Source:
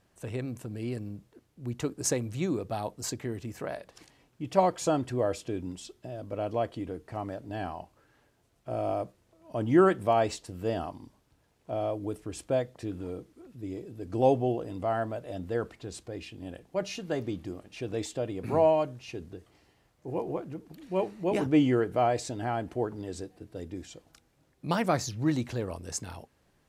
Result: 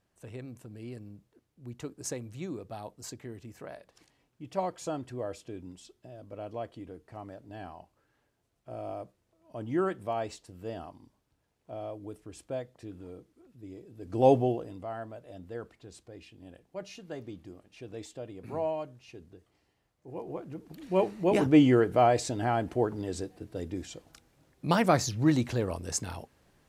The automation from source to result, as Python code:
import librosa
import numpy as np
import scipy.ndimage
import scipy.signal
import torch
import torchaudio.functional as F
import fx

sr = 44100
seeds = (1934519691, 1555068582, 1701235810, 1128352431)

y = fx.gain(x, sr, db=fx.line((13.88, -8.0), (14.34, 3.5), (14.87, -9.0), (20.07, -9.0), (20.85, 3.0)))